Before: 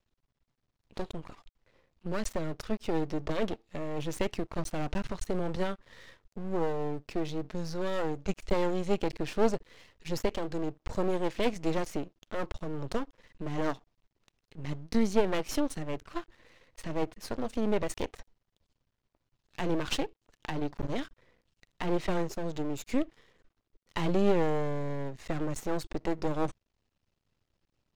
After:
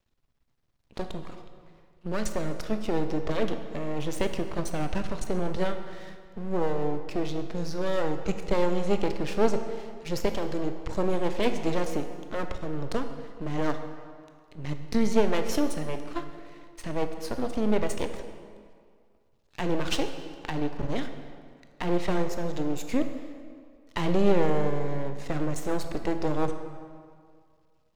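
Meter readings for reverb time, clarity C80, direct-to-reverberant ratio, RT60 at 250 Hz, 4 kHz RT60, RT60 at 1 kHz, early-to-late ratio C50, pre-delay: 2.1 s, 9.5 dB, 7.0 dB, 2.0 s, 1.5 s, 2.1 s, 8.0 dB, 18 ms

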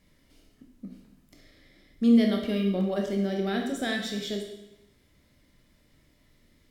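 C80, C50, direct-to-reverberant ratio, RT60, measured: 7.5 dB, 4.5 dB, 1.5 dB, 0.90 s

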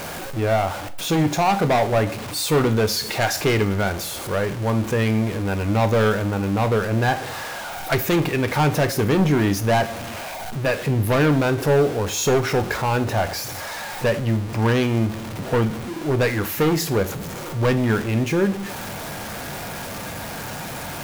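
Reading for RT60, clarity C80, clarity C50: 0.45 s, 20.0 dB, 16.0 dB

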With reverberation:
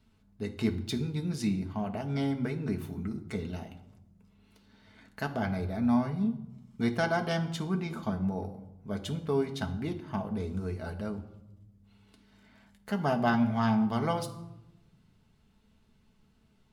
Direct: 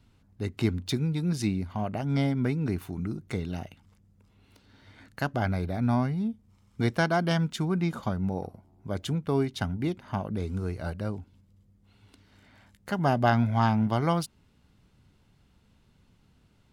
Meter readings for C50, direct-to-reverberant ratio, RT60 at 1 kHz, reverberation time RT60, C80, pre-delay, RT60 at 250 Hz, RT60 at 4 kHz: 12.5 dB, 3.0 dB, 0.85 s, 0.90 s, 15.0 dB, 5 ms, 1.3 s, 0.60 s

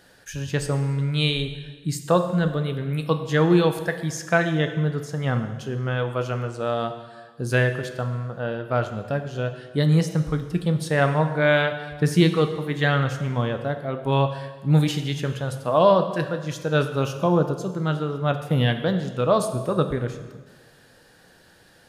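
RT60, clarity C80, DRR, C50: 1.4 s, 10.5 dB, 7.0 dB, 9.5 dB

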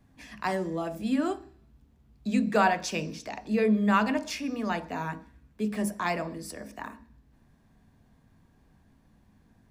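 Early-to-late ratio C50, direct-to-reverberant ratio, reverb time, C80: 16.0 dB, 9.5 dB, 0.50 s, 19.5 dB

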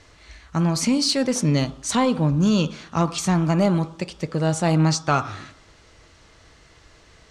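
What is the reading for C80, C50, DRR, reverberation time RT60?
18.0 dB, 16.0 dB, 11.5 dB, 0.70 s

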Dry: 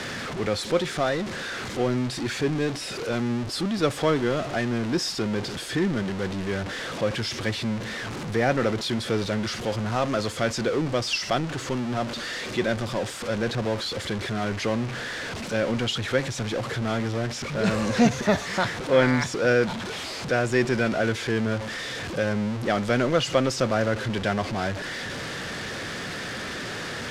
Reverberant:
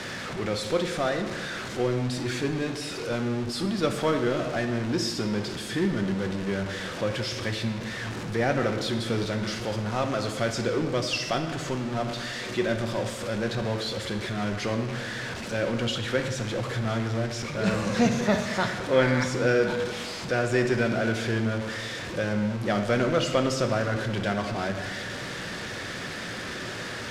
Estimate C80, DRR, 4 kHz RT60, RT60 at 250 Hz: 9.0 dB, 5.0 dB, 1.0 s, 1.8 s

